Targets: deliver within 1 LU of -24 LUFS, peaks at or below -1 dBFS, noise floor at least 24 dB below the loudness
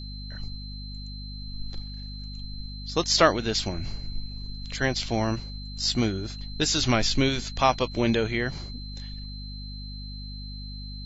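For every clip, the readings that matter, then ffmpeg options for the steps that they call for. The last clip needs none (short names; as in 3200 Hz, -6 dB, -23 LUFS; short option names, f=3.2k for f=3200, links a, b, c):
hum 50 Hz; harmonics up to 250 Hz; hum level -35 dBFS; steady tone 4100 Hz; tone level -42 dBFS; loudness -26.5 LUFS; peak -6.0 dBFS; loudness target -24.0 LUFS
-> -af "bandreject=f=50:t=h:w=6,bandreject=f=100:t=h:w=6,bandreject=f=150:t=h:w=6,bandreject=f=200:t=h:w=6,bandreject=f=250:t=h:w=6"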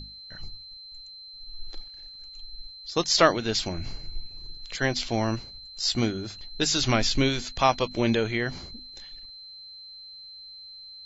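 hum none; steady tone 4100 Hz; tone level -42 dBFS
-> -af "bandreject=f=4.1k:w=30"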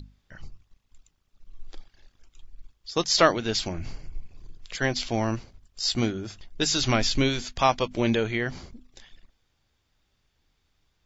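steady tone none; loudness -25.5 LUFS; peak -5.5 dBFS; loudness target -24.0 LUFS
-> -af "volume=1.5dB"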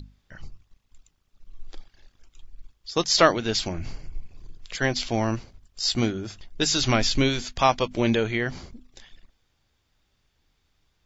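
loudness -24.0 LUFS; peak -4.0 dBFS; noise floor -71 dBFS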